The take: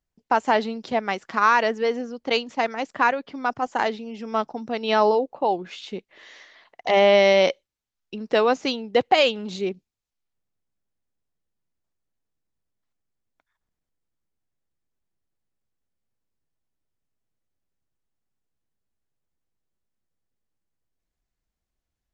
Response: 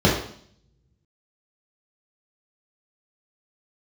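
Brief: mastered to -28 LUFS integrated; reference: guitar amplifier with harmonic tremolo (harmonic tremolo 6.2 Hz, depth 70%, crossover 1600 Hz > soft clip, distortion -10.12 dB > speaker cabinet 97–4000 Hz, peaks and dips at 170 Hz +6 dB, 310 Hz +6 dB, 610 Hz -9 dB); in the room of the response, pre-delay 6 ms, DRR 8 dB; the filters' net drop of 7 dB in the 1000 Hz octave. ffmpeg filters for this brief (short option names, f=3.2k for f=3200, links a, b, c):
-filter_complex "[0:a]equalizer=f=1k:t=o:g=-7.5,asplit=2[a][b];[1:a]atrim=start_sample=2205,adelay=6[c];[b][c]afir=irnorm=-1:irlink=0,volume=-28.5dB[d];[a][d]amix=inputs=2:normalize=0,acrossover=split=1600[e][f];[e]aeval=exprs='val(0)*(1-0.7/2+0.7/2*cos(2*PI*6.2*n/s))':c=same[g];[f]aeval=exprs='val(0)*(1-0.7/2-0.7/2*cos(2*PI*6.2*n/s))':c=same[h];[g][h]amix=inputs=2:normalize=0,asoftclip=threshold=-21dB,highpass=97,equalizer=f=170:t=q:w=4:g=6,equalizer=f=310:t=q:w=4:g=6,equalizer=f=610:t=q:w=4:g=-9,lowpass=f=4k:w=0.5412,lowpass=f=4k:w=1.3066,volume=3dB"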